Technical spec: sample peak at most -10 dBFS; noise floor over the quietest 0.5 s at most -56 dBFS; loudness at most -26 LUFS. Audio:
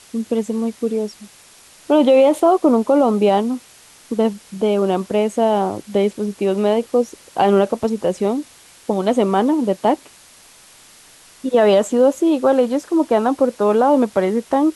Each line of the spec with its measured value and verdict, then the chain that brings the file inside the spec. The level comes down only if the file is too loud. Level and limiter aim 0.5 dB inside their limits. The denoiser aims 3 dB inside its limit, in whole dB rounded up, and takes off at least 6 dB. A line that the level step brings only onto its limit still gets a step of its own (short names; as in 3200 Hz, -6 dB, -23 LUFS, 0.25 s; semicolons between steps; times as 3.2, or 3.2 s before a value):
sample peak -5.0 dBFS: fail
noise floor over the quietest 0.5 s -47 dBFS: fail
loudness -17.5 LUFS: fail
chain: denoiser 6 dB, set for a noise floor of -47 dBFS; gain -9 dB